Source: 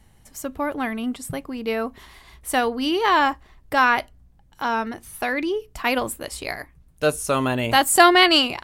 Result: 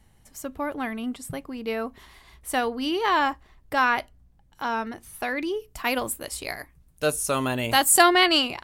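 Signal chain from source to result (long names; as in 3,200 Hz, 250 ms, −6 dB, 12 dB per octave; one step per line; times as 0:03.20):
0:05.41–0:08.01: high-shelf EQ 7,600 Hz → 4,100 Hz +7.5 dB
level −4 dB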